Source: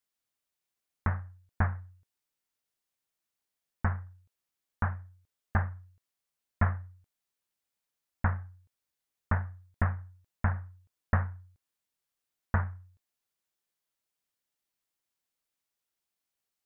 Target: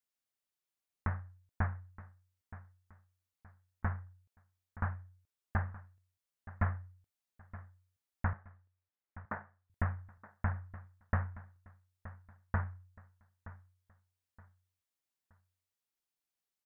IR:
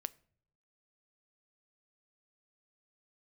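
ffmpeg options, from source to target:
-filter_complex "[0:a]asettb=1/sr,asplit=3[link_01][link_02][link_03];[link_01]atrim=end=8.334[link_04];[link_02]atrim=start=8.33:end=9.7,asetpts=PTS-STARTPTS,afade=type=in:duration=0.004:curve=qsin,afade=type=out:start_time=1.366:duration=0.004:curve=qsin,highpass=240,lowpass=2200[link_05];[link_03]atrim=start=9.696[link_06];[link_04][link_05]acrossfade=duration=0.004:curve1=hsin:curve2=qsin[link_07];[link_07][link_06]acrossfade=duration=0.004:curve1=qsin:curve2=hsin,asplit=2[link_08][link_09];[link_09]aecho=0:1:922|1844|2766:0.15|0.0494|0.0163[link_10];[link_08][link_10]amix=inputs=2:normalize=0,volume=-5.5dB"

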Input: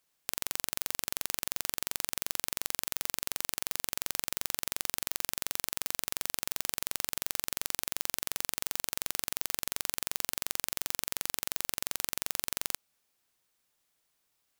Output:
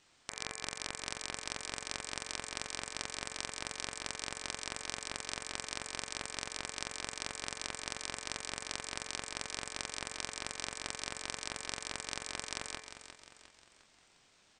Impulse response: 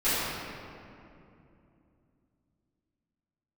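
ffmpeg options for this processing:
-filter_complex "[0:a]highshelf=frequency=3800:gain=-5,bandreject=frequency=106.6:width_type=h:width=4,bandreject=frequency=213.2:width_type=h:width=4,bandreject=frequency=319.8:width_type=h:width=4,bandreject=frequency=426.4:width_type=h:width=4,bandreject=frequency=533:width_type=h:width=4,bandreject=frequency=639.6:width_type=h:width=4,bandreject=frequency=746.2:width_type=h:width=4,bandreject=frequency=852.8:width_type=h:width=4,bandreject=frequency=959.4:width_type=h:width=4,alimiter=limit=-14dB:level=0:latency=1:release=178,aresample=16000,asoftclip=type=tanh:threshold=-34.5dB,aresample=44100,asplit=2[link_01][link_02];[link_02]adelay=26,volume=-6dB[link_03];[link_01][link_03]amix=inputs=2:normalize=0,aeval=exprs='val(0)*sin(2*PI*1400*n/s)':channel_layout=same,asplit=2[link_04][link_05];[link_05]aecho=0:1:354|708|1062|1416|1770:0.299|0.134|0.0605|0.0272|0.0122[link_06];[link_04][link_06]amix=inputs=2:normalize=0,volume=18dB"

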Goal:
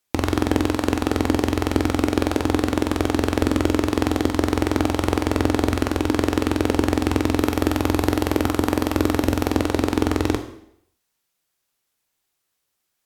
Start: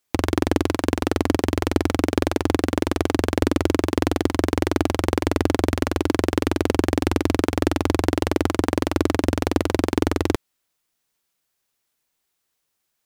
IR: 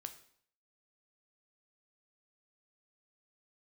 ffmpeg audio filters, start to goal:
-filter_complex "[0:a]asettb=1/sr,asplit=3[link_01][link_02][link_03];[link_01]atrim=end=7.364[link_04];[link_02]atrim=start=7.36:end=9.5,asetpts=PTS-STARTPTS,afade=type=in:duration=0.004:curve=qsin,afade=type=out:start_time=2.136:duration=0.004:curve=qsin,equalizer=frequency=13000:width_type=o:width=0.38:gain=8[link_05];[link_03]atrim=start=9.496[link_06];[link_04][link_05]acrossfade=duration=0.004:curve1=hsin:curve2=qsin[link_07];[link_07][link_06]acrossfade=duration=0.004:curve1=qsin:curve2=hsin[link_08];[1:a]atrim=start_sample=2205,asetrate=36162,aresample=44100[link_09];[link_08][link_09]afir=irnorm=-1:irlink=0,volume=3.5dB"

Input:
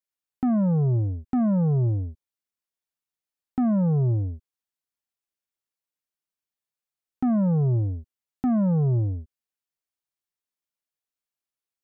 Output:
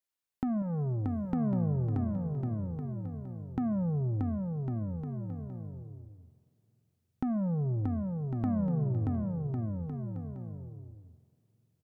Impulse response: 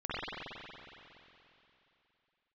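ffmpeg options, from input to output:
-filter_complex "[0:a]asettb=1/sr,asplit=3[link_01][link_02][link_03];[link_01]atrim=end=0.624[link_04];[link_02]atrim=start=0.62:end=1.32,asetpts=PTS-STARTPTS,afade=type=in:duration=0.004:curve=qsin,afade=type=out:start_time=0.696:duration=0.004:curve=qsin,tiltshelf=frequency=1100:gain=-6.5[link_05];[link_03]atrim=start=1.316[link_06];[link_04][link_05]acrossfade=duration=0.004:curve1=hsin:curve2=qsin[link_07];[link_07][link_06]acrossfade=duration=0.004:curve1=qsin:curve2=hsin,acompressor=threshold=-31dB:ratio=6,aecho=1:1:630|1102|1457|1723|1922:0.631|0.398|0.251|0.158|0.1,asplit=2[link_08][link_09];[1:a]atrim=start_sample=2205[link_10];[link_09][link_10]afir=irnorm=-1:irlink=0,volume=-24.5dB[link_11];[link_08][link_11]amix=inputs=2:normalize=0"

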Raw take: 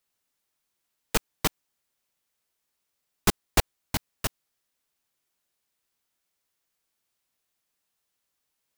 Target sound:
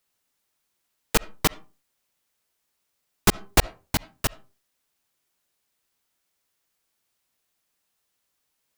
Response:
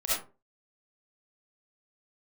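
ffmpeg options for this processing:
-filter_complex "[0:a]asplit=2[link_01][link_02];[1:a]atrim=start_sample=2205,lowpass=3500[link_03];[link_02][link_03]afir=irnorm=-1:irlink=0,volume=-27dB[link_04];[link_01][link_04]amix=inputs=2:normalize=0,volume=3.5dB"

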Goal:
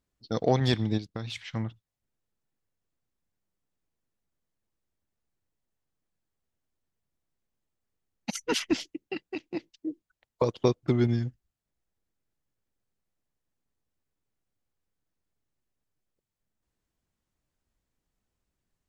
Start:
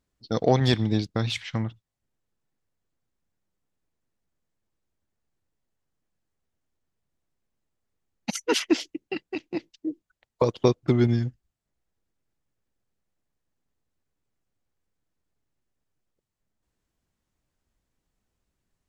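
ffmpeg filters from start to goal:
ffmpeg -i in.wav -filter_complex "[0:a]asplit=3[link_01][link_02][link_03];[link_01]afade=type=out:start_time=0.97:duration=0.02[link_04];[link_02]acompressor=threshold=-31dB:ratio=2.5,afade=type=in:start_time=0.97:duration=0.02,afade=type=out:start_time=1.55:duration=0.02[link_05];[link_03]afade=type=in:start_time=1.55:duration=0.02[link_06];[link_04][link_05][link_06]amix=inputs=3:normalize=0,asettb=1/sr,asplit=3[link_07][link_08][link_09];[link_07]atrim=end=8.344[link_10];[link_08]atrim=start=8.34:end=8.85,asetpts=PTS-STARTPTS,afade=type=in:duration=0.004:curve=qsin,afade=type=out:start_time=0.506:duration=0.004:curve=qsin,lowshelf=frequency=230:width_type=q:width=1.5:gain=11[link_11];[link_09]atrim=start=8.846[link_12];[link_10][link_11]acrossfade=duration=0.004:curve1=hsin:curve2=qsin[link_13];[link_13][link_12]acrossfade=duration=0.004:curve1=qsin:curve2=hsin,volume=-3.5dB" out.wav

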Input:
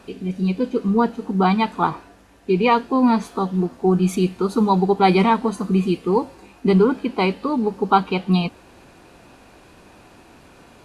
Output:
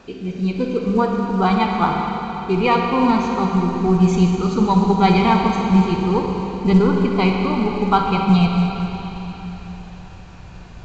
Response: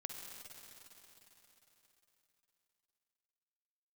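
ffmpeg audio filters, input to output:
-filter_complex "[0:a]asubboost=boost=9:cutoff=100,asplit=2[link_01][link_02];[link_02]asoftclip=type=tanh:threshold=-13dB,volume=-12dB[link_03];[link_01][link_03]amix=inputs=2:normalize=0[link_04];[1:a]atrim=start_sample=2205[link_05];[link_04][link_05]afir=irnorm=-1:irlink=0,volume=3.5dB" -ar 16000 -c:a pcm_alaw

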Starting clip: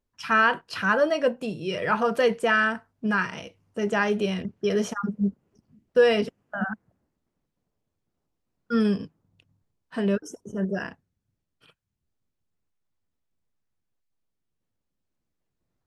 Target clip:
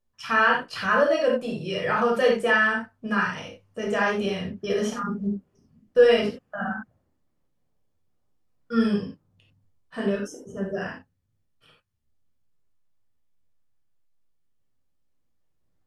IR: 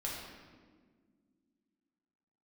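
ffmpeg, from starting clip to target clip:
-filter_complex "[1:a]atrim=start_sample=2205,atrim=end_sample=3969,asetrate=39690,aresample=44100[link_01];[0:a][link_01]afir=irnorm=-1:irlink=0"

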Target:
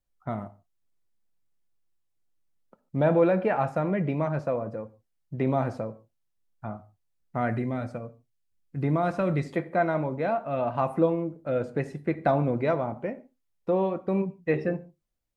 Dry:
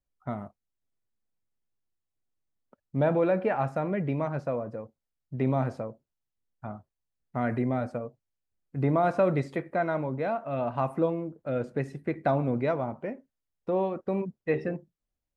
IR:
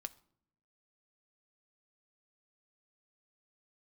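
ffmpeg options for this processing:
-filter_complex "[0:a]asettb=1/sr,asplit=3[link_01][link_02][link_03];[link_01]atrim=end=7.504[link_04];[link_02]atrim=start=7.5:end=9.46,asetpts=PTS-STARTPTS,afade=type=in:duration=0.004:curve=qsin,afade=type=out:start_time=1.956:duration=0.004:curve=qsin,equalizer=frequency=660:width_type=o:width=2.2:gain=-6[link_05];[link_03]atrim=start=9.456[link_06];[link_04][link_05]acrossfade=duration=0.004:curve1=hsin:curve2=qsin[link_07];[link_07][link_06]acrossfade=duration=0.004:curve1=qsin:curve2=hsin[link_08];[1:a]atrim=start_sample=2205,afade=type=out:start_time=0.19:duration=0.01,atrim=end_sample=8820,asetrate=40131,aresample=44100[link_09];[link_08][link_09]afir=irnorm=-1:irlink=0,volume=5.5dB"

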